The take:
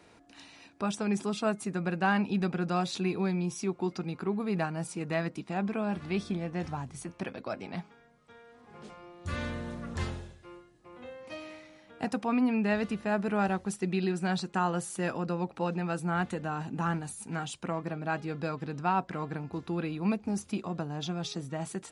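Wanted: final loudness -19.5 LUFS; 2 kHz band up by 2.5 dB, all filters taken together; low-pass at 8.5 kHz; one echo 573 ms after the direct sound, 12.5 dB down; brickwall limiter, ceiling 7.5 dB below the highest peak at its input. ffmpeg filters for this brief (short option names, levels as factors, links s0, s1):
-af "lowpass=8500,equalizer=f=2000:t=o:g=3.5,alimiter=limit=0.0841:level=0:latency=1,aecho=1:1:573:0.237,volume=5.01"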